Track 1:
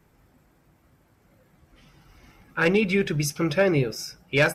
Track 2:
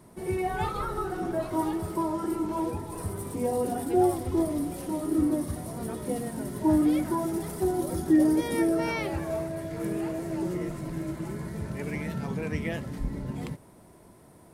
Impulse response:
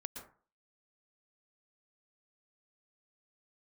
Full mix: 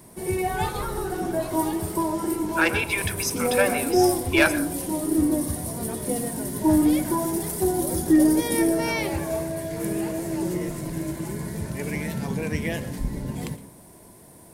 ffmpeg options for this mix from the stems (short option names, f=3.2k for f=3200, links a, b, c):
-filter_complex "[0:a]highpass=f=630:w=0.5412,highpass=f=630:w=1.3066,volume=-0.5dB,asplit=2[a][b];[b]volume=-4dB[c];[1:a]highshelf=f=5.2k:g=11,bandreject=f=1.3k:w=8.1,aeval=exprs='0.266*(cos(1*acos(clip(val(0)/0.266,-1,1)))-cos(1*PI/2))+0.00335*(cos(6*acos(clip(val(0)/0.266,-1,1)))-cos(6*PI/2))':c=same,volume=0.5dB,asplit=2[d][e];[e]volume=-4dB[f];[2:a]atrim=start_sample=2205[g];[c][f]amix=inputs=2:normalize=0[h];[h][g]afir=irnorm=-1:irlink=0[i];[a][d][i]amix=inputs=3:normalize=0"